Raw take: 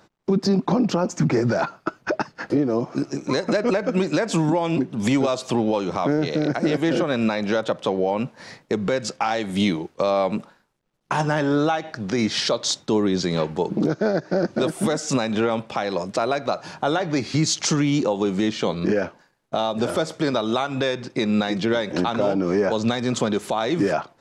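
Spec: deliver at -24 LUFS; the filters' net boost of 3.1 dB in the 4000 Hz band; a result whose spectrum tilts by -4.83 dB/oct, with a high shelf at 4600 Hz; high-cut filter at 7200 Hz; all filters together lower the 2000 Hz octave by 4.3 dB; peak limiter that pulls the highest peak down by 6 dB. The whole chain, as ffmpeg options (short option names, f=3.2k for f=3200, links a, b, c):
-af "lowpass=7.2k,equalizer=f=2k:t=o:g=-7,equalizer=f=4k:t=o:g=9,highshelf=f=4.6k:g=-6.5,volume=1dB,alimiter=limit=-13.5dB:level=0:latency=1"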